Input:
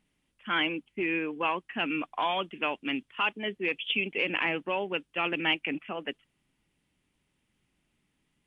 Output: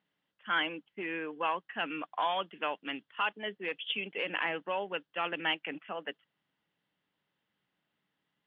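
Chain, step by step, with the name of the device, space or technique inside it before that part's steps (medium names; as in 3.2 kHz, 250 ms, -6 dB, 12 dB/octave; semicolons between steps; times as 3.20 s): kitchen radio (cabinet simulation 220–4100 Hz, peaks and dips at 250 Hz -9 dB, 360 Hz -7 dB, 1.6 kHz +3 dB, 2.4 kHz -9 dB); trim -1.5 dB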